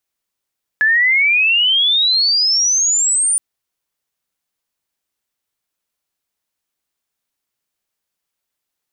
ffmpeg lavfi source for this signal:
ffmpeg -f lavfi -i "aevalsrc='pow(10,(-10-2.5*t/2.57)/20)*sin(2*PI*1700*2.57/log(9400/1700)*(exp(log(9400/1700)*t/2.57)-1))':duration=2.57:sample_rate=44100" out.wav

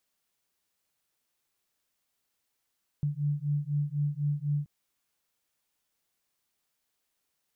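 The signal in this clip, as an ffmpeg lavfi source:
ffmpeg -f lavfi -i "aevalsrc='0.0316*(sin(2*PI*144*t)+sin(2*PI*148*t))':duration=1.63:sample_rate=44100" out.wav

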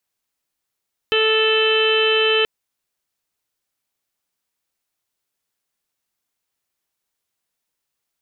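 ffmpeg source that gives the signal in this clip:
ffmpeg -f lavfi -i "aevalsrc='0.133*sin(2*PI*439*t)+0.0237*sin(2*PI*878*t)+0.0473*sin(2*PI*1317*t)+0.0531*sin(2*PI*1756*t)+0.0168*sin(2*PI*2195*t)+0.0891*sin(2*PI*2634*t)+0.106*sin(2*PI*3073*t)+0.015*sin(2*PI*3512*t)+0.0178*sin(2*PI*3951*t)':duration=1.33:sample_rate=44100" out.wav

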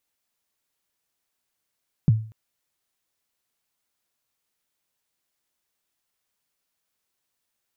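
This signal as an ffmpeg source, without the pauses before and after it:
ffmpeg -f lavfi -i "aevalsrc='0.316*pow(10,-3*t/0.41)*sin(2*PI*(180*0.025/log(110/180)*(exp(log(110/180)*min(t,0.025)/0.025)-1)+110*max(t-0.025,0)))':duration=0.24:sample_rate=44100" out.wav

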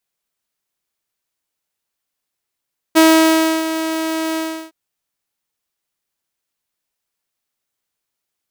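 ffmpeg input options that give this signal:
ffmpeg -f lavfi -i "aevalsrc='0.631*(2*mod(321*t,1)-1)':duration=1.763:sample_rate=44100,afade=type=in:duration=0.024,afade=type=out:start_time=0.024:duration=0.658:silence=0.251,afade=type=out:start_time=1.42:duration=0.343" out.wav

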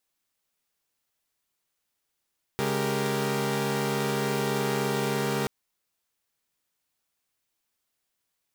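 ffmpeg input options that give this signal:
ffmpeg -f lavfi -i "aevalsrc='0.0376*((2*mod(138.59*t,1)-1)+(2*mod(207.65*t,1)-1)+(2*mod(392*t,1)-1)+(2*mod(466.16*t,1)-1))':duration=2.88:sample_rate=44100" out.wav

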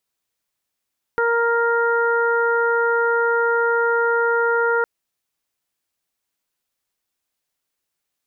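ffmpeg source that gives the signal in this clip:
ffmpeg -f lavfi -i "aevalsrc='0.112*sin(2*PI*467*t)+0.0631*sin(2*PI*934*t)+0.106*sin(2*PI*1401*t)+0.0251*sin(2*PI*1868*t)':duration=3.66:sample_rate=44100" out.wav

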